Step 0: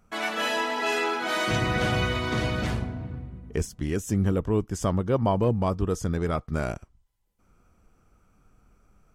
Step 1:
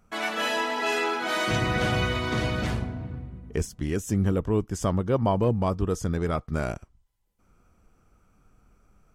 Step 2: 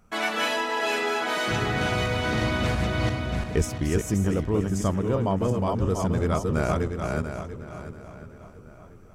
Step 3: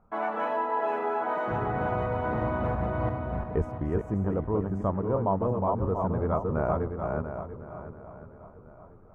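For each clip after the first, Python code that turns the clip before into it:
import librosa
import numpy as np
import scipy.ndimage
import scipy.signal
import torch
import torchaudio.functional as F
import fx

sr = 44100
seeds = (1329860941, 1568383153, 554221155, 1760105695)

y1 = x
y2 = fx.reverse_delay_fb(y1, sr, ms=344, feedback_pct=48, wet_db=-4)
y2 = fx.rider(y2, sr, range_db=4, speed_s=0.5)
y2 = fx.echo_filtered(y2, sr, ms=1052, feedback_pct=40, hz=3400.0, wet_db=-16.5)
y3 = fx.curve_eq(y2, sr, hz=(330.0, 540.0, 960.0, 4800.0), db=(0, 4, 7, -30))
y3 = y3 * 10.0 ** (-4.5 / 20.0)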